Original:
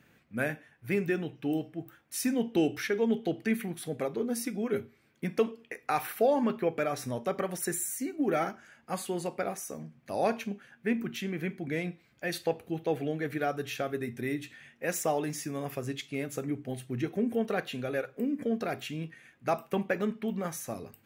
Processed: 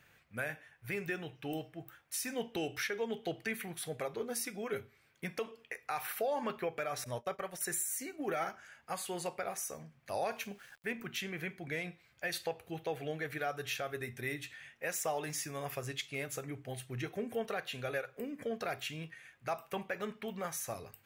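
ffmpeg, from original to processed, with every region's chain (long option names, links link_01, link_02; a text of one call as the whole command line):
ffmpeg -i in.wav -filter_complex "[0:a]asettb=1/sr,asplit=3[link_01][link_02][link_03];[link_01]atrim=end=7.044[link_04];[link_02]atrim=start=7.04:end=7.61,asetpts=PTS-STARTPTS,afade=type=in:duration=0.004:curve=qsin,afade=type=out:start_time=0.566:duration=0.004:curve=qsin,agate=range=-33dB:threshold=-33dB:ratio=3:release=100:detection=peak,aeval=exprs='val(0)+0.000708*sin(2*PI*600*n/s)':channel_layout=same,acompressor=mode=upward:threshold=-38dB:ratio=2.5:attack=3.2:release=140:knee=2.83:detection=peak[link_05];[link_03]atrim=start=7.606[link_06];[link_04][link_05]acrossfade=duration=0.004:curve1=hsin:curve2=qsin[link_07];[link_07][link_06]acrossfade=duration=0.004:curve1=qsin:curve2=hsin,asettb=1/sr,asplit=3[link_08][link_09][link_10];[link_08]atrim=end=10.314[link_11];[link_09]atrim=start=10.31:end=10.92,asetpts=PTS-STARTPTS,afade=type=in:duration=0.004:curve=qsin,afade=type=out:start_time=0.606:duration=0.004:curve=qsin,highshelf=frequency=9600:gain=9,aeval=exprs='val(0)*gte(abs(val(0)),0.00133)':channel_layout=same[link_12];[link_10]atrim=start=10.916[link_13];[link_11][link_12]acrossfade=duration=0.004:curve1=hsin:curve2=qsin[link_14];[link_14][link_13]acrossfade=duration=0.004:curve1=qsin:curve2=hsin,equalizer=frequency=250:width_type=o:width=1.5:gain=-14,alimiter=level_in=2.5dB:limit=-24dB:level=0:latency=1:release=188,volume=-2.5dB,volume=1dB" out.wav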